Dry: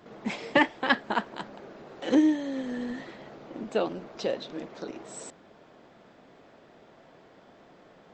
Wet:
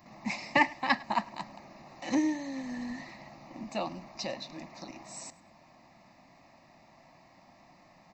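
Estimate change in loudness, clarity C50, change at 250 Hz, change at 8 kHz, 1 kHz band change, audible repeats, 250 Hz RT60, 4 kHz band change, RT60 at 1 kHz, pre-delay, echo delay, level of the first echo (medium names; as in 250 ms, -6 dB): -4.0 dB, no reverb, -6.0 dB, +1.0 dB, -0.5 dB, 1, no reverb, -3.0 dB, no reverb, no reverb, 103 ms, -22.5 dB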